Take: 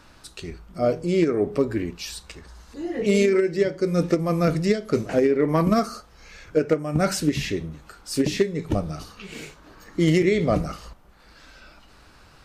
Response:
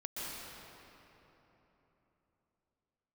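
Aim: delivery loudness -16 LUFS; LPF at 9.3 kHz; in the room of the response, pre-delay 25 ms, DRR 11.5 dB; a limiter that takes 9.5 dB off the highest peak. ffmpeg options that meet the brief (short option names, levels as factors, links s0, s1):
-filter_complex "[0:a]lowpass=9300,alimiter=limit=0.106:level=0:latency=1,asplit=2[s0][s1];[1:a]atrim=start_sample=2205,adelay=25[s2];[s1][s2]afir=irnorm=-1:irlink=0,volume=0.211[s3];[s0][s3]amix=inputs=2:normalize=0,volume=4.47"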